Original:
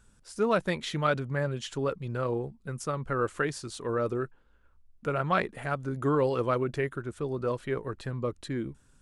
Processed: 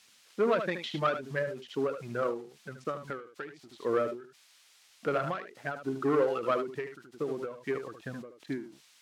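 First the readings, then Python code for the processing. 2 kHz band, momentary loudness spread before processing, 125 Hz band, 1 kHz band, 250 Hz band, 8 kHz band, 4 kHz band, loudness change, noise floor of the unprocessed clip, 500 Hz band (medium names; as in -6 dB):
-3.5 dB, 8 LU, -10.5 dB, -3.0 dB, -3.5 dB, under -10 dB, -3.5 dB, -2.0 dB, -62 dBFS, -1.5 dB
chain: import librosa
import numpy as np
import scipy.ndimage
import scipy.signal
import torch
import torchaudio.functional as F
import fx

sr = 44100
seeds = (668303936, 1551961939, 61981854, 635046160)

y = fx.wiener(x, sr, points=9)
y = fx.peak_eq(y, sr, hz=910.0, db=-6.0, octaves=0.4)
y = fx.dereverb_blind(y, sr, rt60_s=1.7)
y = fx.leveller(y, sr, passes=2)
y = scipy.signal.sosfilt(scipy.signal.butter(2, 240.0, 'highpass', fs=sr, output='sos'), y)
y = y + 10.0 ** (-8.0 / 20.0) * np.pad(y, (int(75 * sr / 1000.0), 0))[:len(y)]
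y = fx.dmg_noise_colour(y, sr, seeds[0], colour='violet', level_db=-38.0)
y = scipy.signal.sosfilt(scipy.signal.butter(2, 3600.0, 'lowpass', fs=sr, output='sos'), y)
y = fx.end_taper(y, sr, db_per_s=110.0)
y = y * librosa.db_to_amplitude(-3.5)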